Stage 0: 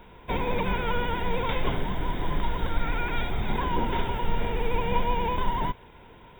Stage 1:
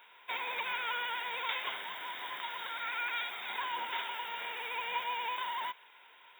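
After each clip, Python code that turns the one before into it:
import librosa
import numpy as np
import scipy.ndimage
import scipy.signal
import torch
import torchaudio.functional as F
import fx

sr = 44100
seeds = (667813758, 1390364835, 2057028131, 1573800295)

y = scipy.signal.sosfilt(scipy.signal.butter(2, 1400.0, 'highpass', fs=sr, output='sos'), x)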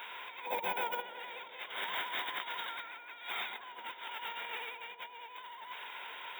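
y = fx.spec_box(x, sr, start_s=0.46, length_s=0.56, low_hz=970.0, high_hz=9500.0, gain_db=-14)
y = fx.over_compress(y, sr, threshold_db=-45.0, ratio=-0.5)
y = fx.echo_wet_bandpass(y, sr, ms=187, feedback_pct=71, hz=420.0, wet_db=-11.0)
y = F.gain(torch.from_numpy(y), 5.0).numpy()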